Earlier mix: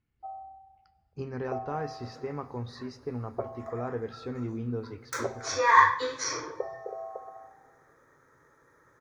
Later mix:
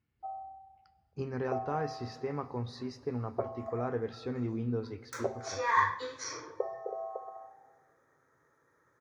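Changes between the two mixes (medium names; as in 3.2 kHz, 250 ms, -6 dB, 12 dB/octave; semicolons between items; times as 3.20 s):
second sound -8.0 dB; master: add high-pass 65 Hz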